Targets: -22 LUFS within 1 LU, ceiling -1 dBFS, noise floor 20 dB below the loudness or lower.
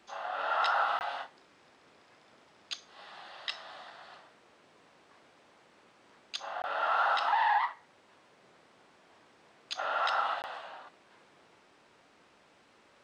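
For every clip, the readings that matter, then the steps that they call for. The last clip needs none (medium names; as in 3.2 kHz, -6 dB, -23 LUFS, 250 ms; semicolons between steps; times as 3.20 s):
dropouts 3; longest dropout 19 ms; loudness -32.0 LUFS; peak level -17.5 dBFS; loudness target -22.0 LUFS
-> interpolate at 0.99/6.62/10.42 s, 19 ms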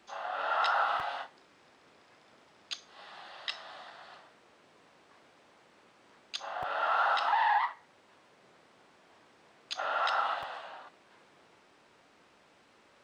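dropouts 0; loudness -32.0 LUFS; peak level -17.5 dBFS; loudness target -22.0 LUFS
-> trim +10 dB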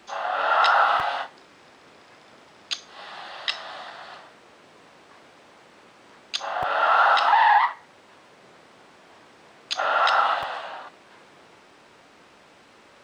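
loudness -22.0 LUFS; peak level -7.5 dBFS; noise floor -53 dBFS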